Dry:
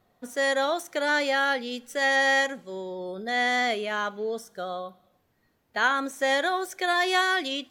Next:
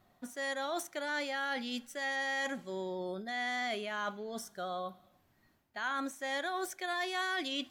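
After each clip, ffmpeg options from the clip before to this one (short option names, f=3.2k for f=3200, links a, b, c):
-af "areverse,acompressor=threshold=-33dB:ratio=6,areverse,equalizer=f=470:w=7.2:g=-14"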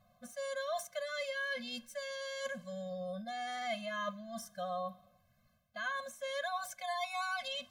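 -af "afftfilt=real='re*eq(mod(floor(b*sr/1024/250),2),0)':imag='im*eq(mod(floor(b*sr/1024/250),2),0)':win_size=1024:overlap=0.75,volume=1dB"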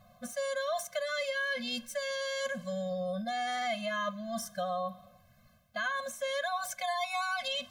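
-af "acompressor=threshold=-41dB:ratio=2.5,volume=9dB"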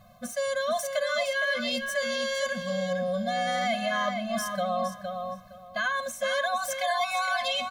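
-filter_complex "[0:a]asplit=2[a][b];[b]adelay=463,lowpass=f=4.6k:p=1,volume=-5.5dB,asplit=2[c][d];[d]adelay=463,lowpass=f=4.6k:p=1,volume=0.22,asplit=2[e][f];[f]adelay=463,lowpass=f=4.6k:p=1,volume=0.22[g];[a][c][e][g]amix=inputs=4:normalize=0,volume=5dB"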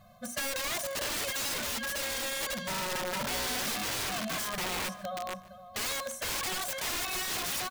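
-af "bandreject=f=60:t=h:w=6,bandreject=f=120:t=h:w=6,bandreject=f=180:t=h:w=6,bandreject=f=240:t=h:w=6,bandreject=f=300:t=h:w=6,bandreject=f=360:t=h:w=6,bandreject=f=420:t=h:w=6,bandreject=f=480:t=h:w=6,bandreject=f=540:t=h:w=6,aeval=exprs='(mod(21.1*val(0)+1,2)-1)/21.1':c=same,aecho=1:1:146:0.0841,volume=-2dB"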